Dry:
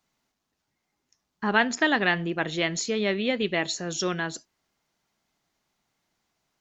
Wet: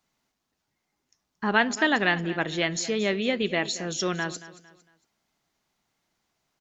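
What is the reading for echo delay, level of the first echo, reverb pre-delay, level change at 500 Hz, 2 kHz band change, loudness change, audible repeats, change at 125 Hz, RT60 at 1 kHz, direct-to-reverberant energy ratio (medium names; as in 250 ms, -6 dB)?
227 ms, -16.5 dB, no reverb, 0.0 dB, 0.0 dB, 0.0 dB, 3, 0.0 dB, no reverb, no reverb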